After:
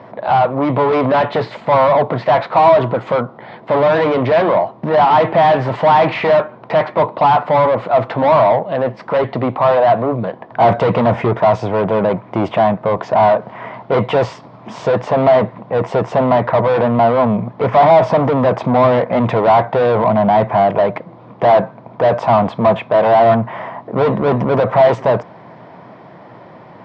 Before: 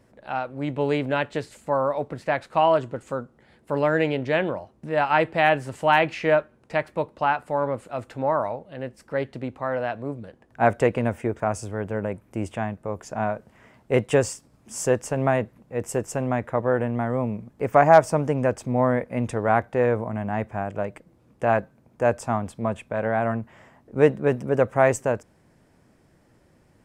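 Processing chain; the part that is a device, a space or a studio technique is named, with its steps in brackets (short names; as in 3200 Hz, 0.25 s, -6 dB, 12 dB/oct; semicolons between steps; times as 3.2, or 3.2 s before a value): 10.63–11.33 tone controls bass +5 dB, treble +6 dB; overdrive pedal into a guitar cabinet (overdrive pedal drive 37 dB, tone 2500 Hz, clips at -2 dBFS; speaker cabinet 89–3800 Hz, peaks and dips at 120 Hz +10 dB, 180 Hz +7 dB, 680 Hz +7 dB, 1000 Hz +8 dB, 1600 Hz -5 dB, 2700 Hz -6 dB); gain -5.5 dB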